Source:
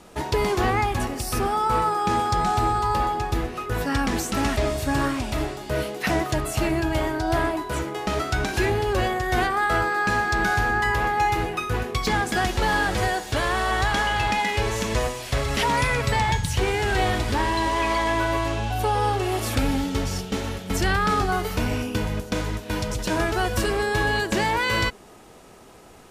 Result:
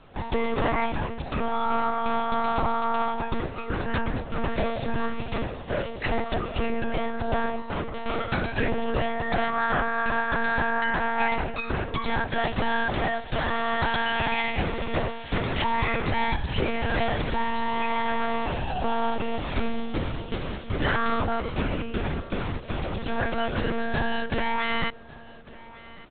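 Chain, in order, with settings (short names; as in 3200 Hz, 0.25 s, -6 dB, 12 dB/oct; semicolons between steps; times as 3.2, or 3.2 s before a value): monotone LPC vocoder at 8 kHz 230 Hz; 4.01–4.58 high shelf 2800 Hz -9.5 dB; on a send: echo 1.15 s -20 dB; on the sum: gain -2.5 dB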